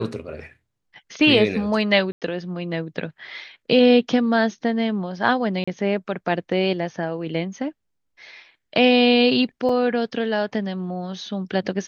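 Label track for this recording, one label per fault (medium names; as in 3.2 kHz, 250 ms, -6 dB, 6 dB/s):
2.120000	2.220000	dropout 97 ms
5.640000	5.670000	dropout 35 ms
9.690000	9.690000	dropout 3.9 ms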